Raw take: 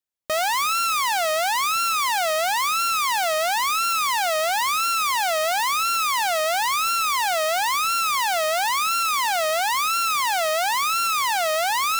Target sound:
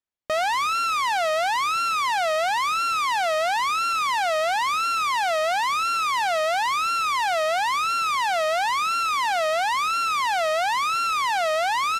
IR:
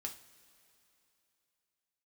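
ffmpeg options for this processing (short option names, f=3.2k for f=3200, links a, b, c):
-af "aemphasis=mode=reproduction:type=50fm,aresample=32000,aresample=44100"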